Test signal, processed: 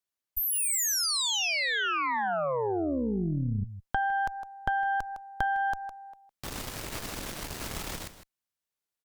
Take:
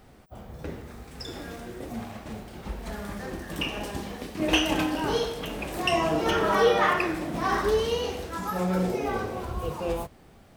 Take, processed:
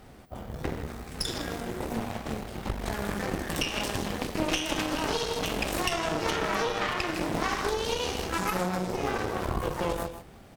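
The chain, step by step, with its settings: dynamic bell 5.6 kHz, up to +6 dB, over -46 dBFS, Q 0.74; delay 158 ms -13 dB; compression 16:1, threshold -30 dBFS; Chebyshev shaper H 4 -9 dB, 8 -25 dB, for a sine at -17.5 dBFS; trim +3 dB

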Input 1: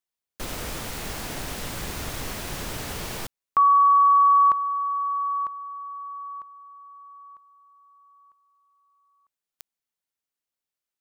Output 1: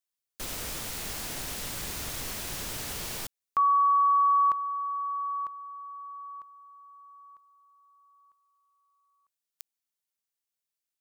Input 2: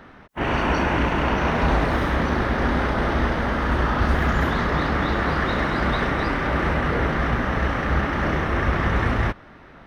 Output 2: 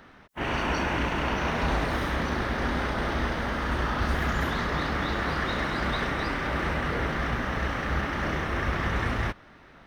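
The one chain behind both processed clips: treble shelf 2.8 kHz +8.5 dB; trim -7 dB

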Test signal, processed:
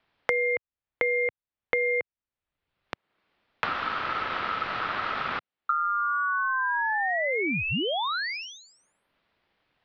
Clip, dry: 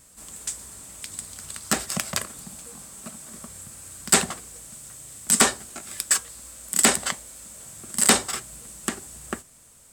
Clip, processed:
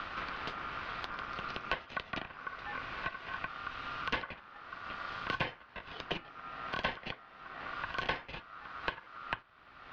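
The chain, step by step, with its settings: Bessel low-pass 1.8 kHz, order 8; ring modulator 1.3 kHz; three bands compressed up and down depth 100%; trim -2 dB

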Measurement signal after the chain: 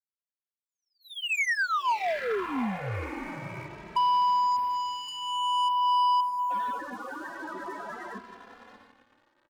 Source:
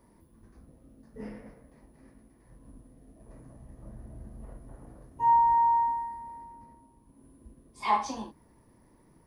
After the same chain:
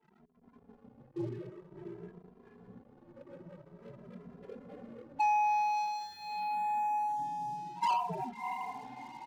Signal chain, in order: rattle on loud lows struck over -37 dBFS, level -35 dBFS; mistuned SSB -92 Hz 290–2100 Hz; compression 10:1, threshold -39 dBFS; tilt shelf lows -4.5 dB, about 1.3 kHz; loudest bins only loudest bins 8; dynamic bell 960 Hz, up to +6 dB, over -56 dBFS, Q 5.8; echo that smears into a reverb 676 ms, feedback 42%, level -9.5 dB; waveshaping leveller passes 3; endless flanger 2.6 ms +0.5 Hz; trim +6.5 dB

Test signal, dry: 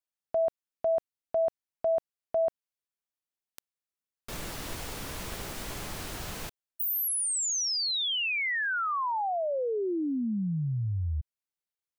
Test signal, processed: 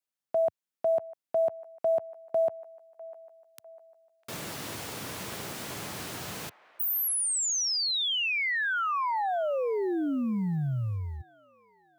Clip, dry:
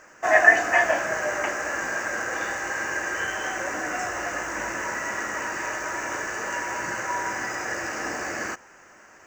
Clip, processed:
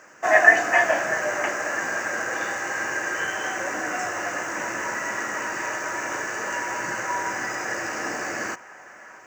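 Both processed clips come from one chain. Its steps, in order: high-pass 98 Hz 24 dB/octave; short-mantissa float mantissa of 6-bit; on a send: feedback echo behind a band-pass 650 ms, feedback 46%, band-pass 1.2 kHz, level -16.5 dB; on the sum: trim +1 dB

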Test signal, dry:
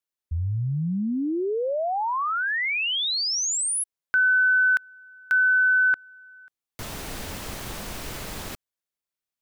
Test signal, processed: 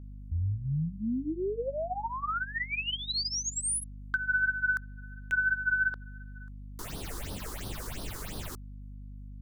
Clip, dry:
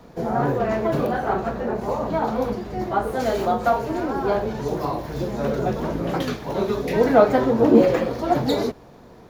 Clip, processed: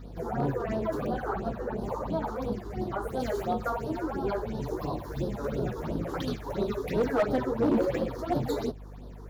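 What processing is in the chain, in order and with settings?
in parallel at -1.5 dB: compression 5:1, threshold -34 dBFS; on the sum: phase shifter stages 6, 2.9 Hz, lowest notch 160–2200 Hz; mains buzz 50 Hz, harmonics 5, -37 dBFS -7 dB/octave; hard clipper -12.5 dBFS; trim -7 dB

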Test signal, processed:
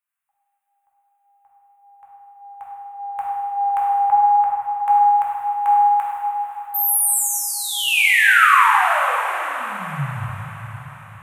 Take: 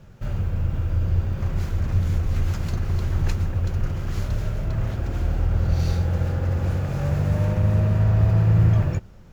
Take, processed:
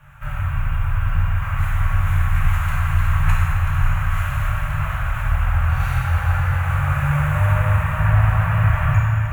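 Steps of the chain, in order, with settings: FFT filter 140 Hz 0 dB, 270 Hz -26 dB, 420 Hz -27 dB, 590 Hz -4 dB, 1.1 kHz +13 dB, 1.7 kHz +12 dB, 2.7 kHz +9 dB, 4.9 kHz -13 dB, 8.8 kHz +8 dB; echo that smears into a reverb 511 ms, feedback 50%, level -9.5 dB; dynamic bell 500 Hz, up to +5 dB, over -49 dBFS, Q 7.3; plate-style reverb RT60 2.1 s, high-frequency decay 0.95×, pre-delay 0 ms, DRR -5 dB; trim -3.5 dB

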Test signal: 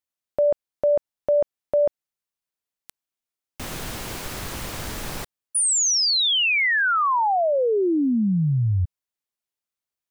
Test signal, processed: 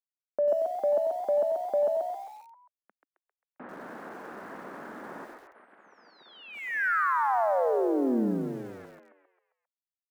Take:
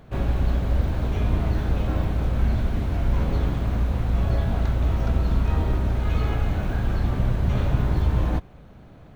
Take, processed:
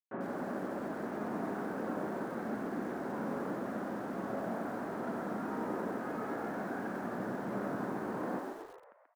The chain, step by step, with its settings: bit crusher 6-bit; elliptic band-pass 210–1600 Hz, stop band 60 dB; on a send: frequency-shifting echo 133 ms, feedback 50%, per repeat +67 Hz, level -4.5 dB; on the sum: bit-crushed delay 92 ms, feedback 35%, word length 7-bit, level -11 dB; trim -6.5 dB

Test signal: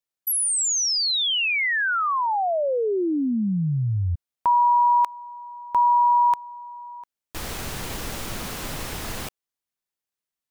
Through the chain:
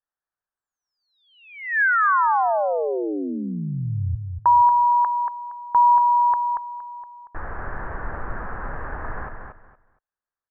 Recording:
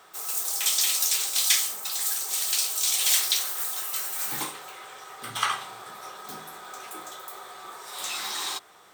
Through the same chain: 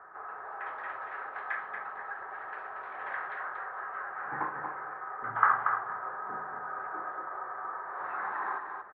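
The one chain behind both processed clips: Chebyshev low-pass 1.7 kHz, order 5; peaking EQ 200 Hz -12 dB 2.9 oct; on a send: feedback delay 233 ms, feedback 22%, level -6 dB; on the sum: trim +6.5 dB

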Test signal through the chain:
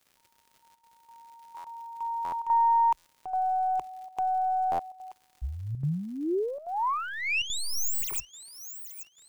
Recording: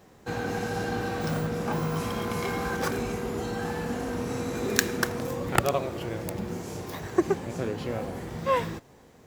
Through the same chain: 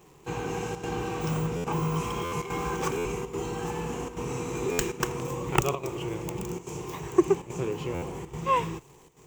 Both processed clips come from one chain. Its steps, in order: tracing distortion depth 0.06 ms; rippled EQ curve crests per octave 0.71, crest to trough 11 dB; on a send: feedback echo behind a high-pass 830 ms, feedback 33%, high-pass 5.5 kHz, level -10 dB; on the sum: crackle 150 per s -45 dBFS; word length cut 12-bit, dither triangular; square tremolo 1.2 Hz, depth 65%, duty 90%; buffer glitch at 1.56/2.24/2.97/4.71/7.94 s, samples 512, times 6; trim -2 dB

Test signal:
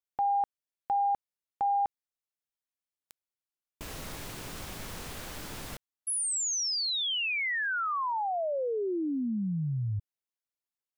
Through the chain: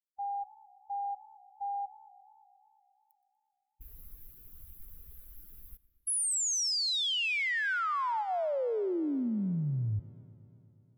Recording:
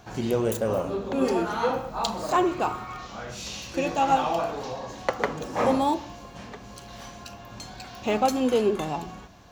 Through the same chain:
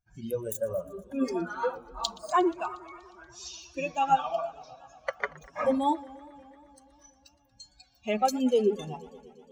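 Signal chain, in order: expander on every frequency bin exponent 2; spectral noise reduction 9 dB; modulated delay 119 ms, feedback 78%, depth 142 cents, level -22 dB; trim +1 dB

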